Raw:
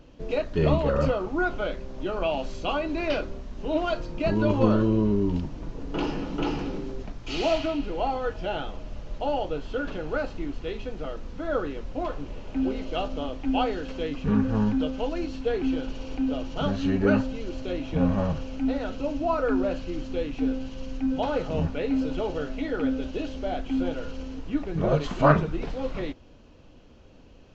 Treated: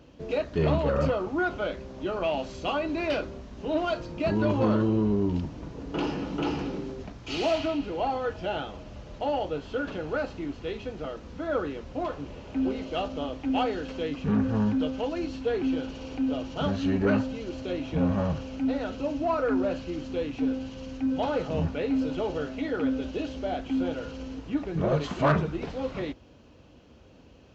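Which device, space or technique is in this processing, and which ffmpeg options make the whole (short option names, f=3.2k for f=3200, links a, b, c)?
saturation between pre-emphasis and de-emphasis: -af "highshelf=f=3.6k:g=8.5,asoftclip=type=tanh:threshold=-16dB,highpass=f=51:w=0.5412,highpass=f=51:w=1.3066,highshelf=f=3.6k:g=-8.5"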